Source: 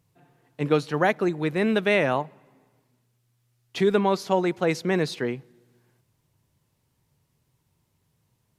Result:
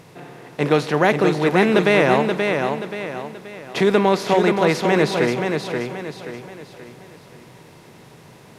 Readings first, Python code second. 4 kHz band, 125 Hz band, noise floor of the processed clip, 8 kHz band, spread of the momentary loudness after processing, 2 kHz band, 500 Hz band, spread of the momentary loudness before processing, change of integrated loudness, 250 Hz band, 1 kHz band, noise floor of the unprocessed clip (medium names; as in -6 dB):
+7.5 dB, +6.5 dB, -46 dBFS, +7.5 dB, 18 LU, +7.5 dB, +7.0 dB, 10 LU, +5.5 dB, +6.5 dB, +7.5 dB, -72 dBFS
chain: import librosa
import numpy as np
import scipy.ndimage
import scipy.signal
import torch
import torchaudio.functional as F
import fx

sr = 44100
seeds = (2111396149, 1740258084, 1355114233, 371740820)

y = fx.bin_compress(x, sr, power=0.6)
y = fx.echo_feedback(y, sr, ms=529, feedback_pct=40, wet_db=-5.0)
y = y * librosa.db_to_amplitude(2.5)